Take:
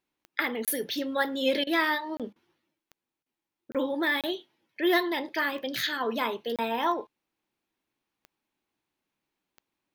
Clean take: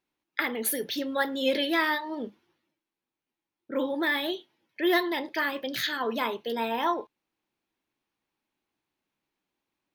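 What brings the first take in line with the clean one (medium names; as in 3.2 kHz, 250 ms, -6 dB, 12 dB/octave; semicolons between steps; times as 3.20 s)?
de-click; interpolate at 0.65/2.17/3.72/4.21/6.56 s, 27 ms; interpolate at 1.64/2.33/3.23 s, 28 ms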